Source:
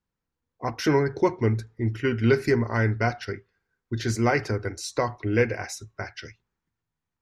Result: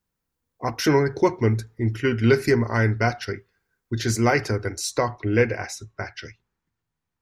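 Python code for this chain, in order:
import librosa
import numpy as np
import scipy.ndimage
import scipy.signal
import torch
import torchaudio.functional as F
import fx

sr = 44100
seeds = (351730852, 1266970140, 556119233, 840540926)

y = fx.high_shelf(x, sr, hz=7400.0, db=fx.steps((0.0, 9.5), (4.99, -3.0)))
y = F.gain(torch.from_numpy(y), 2.5).numpy()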